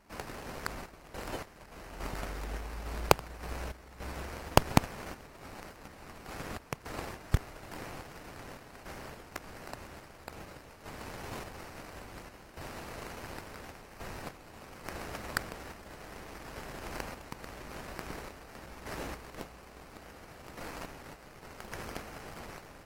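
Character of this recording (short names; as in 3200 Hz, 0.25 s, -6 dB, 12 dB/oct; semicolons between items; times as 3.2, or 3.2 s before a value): random-step tremolo, depth 80%; aliases and images of a low sample rate 3500 Hz, jitter 20%; AAC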